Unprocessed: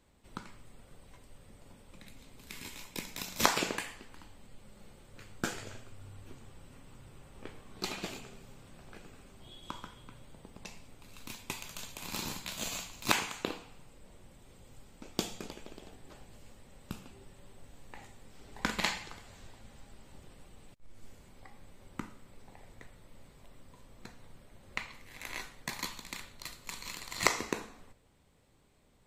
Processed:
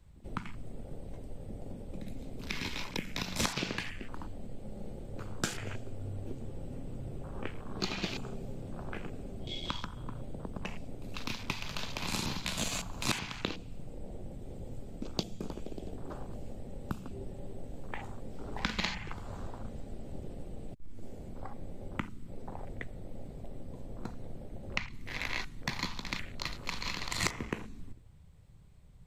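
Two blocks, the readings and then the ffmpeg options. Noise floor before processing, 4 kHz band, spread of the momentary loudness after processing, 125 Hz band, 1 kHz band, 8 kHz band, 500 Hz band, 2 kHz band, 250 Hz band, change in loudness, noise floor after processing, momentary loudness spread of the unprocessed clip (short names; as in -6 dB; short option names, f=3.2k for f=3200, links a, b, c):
-60 dBFS, +1.5 dB, 13 LU, +9.0 dB, -2.0 dB, -2.0 dB, +1.0 dB, 0.0 dB, +4.0 dB, -2.0 dB, -49 dBFS, 25 LU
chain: -filter_complex "[0:a]acrossover=split=190|2200[a][b][c];[a]acompressor=threshold=-50dB:ratio=4[d];[b]acompressor=threshold=-54dB:ratio=4[e];[c]acompressor=threshold=-50dB:ratio=4[f];[d][e][f]amix=inputs=3:normalize=0,afwtdn=0.00158,volume=14dB"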